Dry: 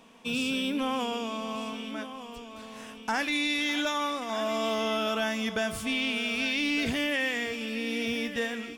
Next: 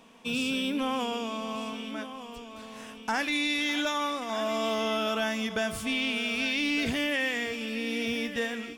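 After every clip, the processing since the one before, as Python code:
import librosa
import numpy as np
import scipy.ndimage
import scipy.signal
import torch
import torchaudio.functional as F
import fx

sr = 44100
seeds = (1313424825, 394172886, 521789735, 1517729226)

y = fx.end_taper(x, sr, db_per_s=190.0)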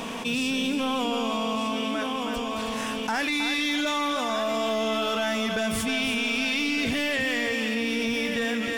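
y = 10.0 ** (-23.5 / 20.0) * np.tanh(x / 10.0 ** (-23.5 / 20.0))
y = y + 10.0 ** (-7.5 / 20.0) * np.pad(y, (int(317 * sr / 1000.0), 0))[:len(y)]
y = fx.env_flatten(y, sr, amount_pct=70)
y = y * librosa.db_to_amplitude(2.5)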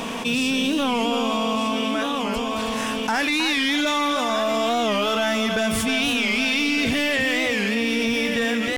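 y = fx.record_warp(x, sr, rpm=45.0, depth_cents=160.0)
y = y * librosa.db_to_amplitude(4.5)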